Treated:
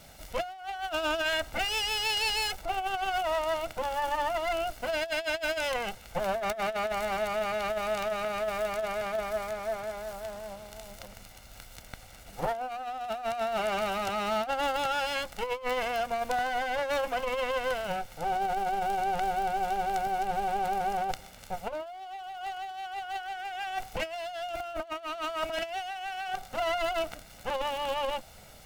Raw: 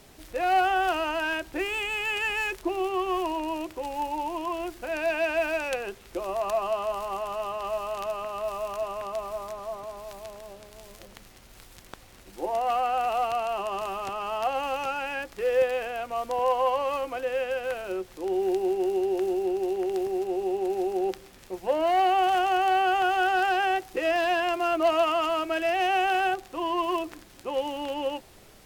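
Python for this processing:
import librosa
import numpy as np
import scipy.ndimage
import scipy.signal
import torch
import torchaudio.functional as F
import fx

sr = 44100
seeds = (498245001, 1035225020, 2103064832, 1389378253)

y = fx.lower_of_two(x, sr, delay_ms=1.4)
y = fx.over_compress(y, sr, threshold_db=-30.0, ratio=-0.5)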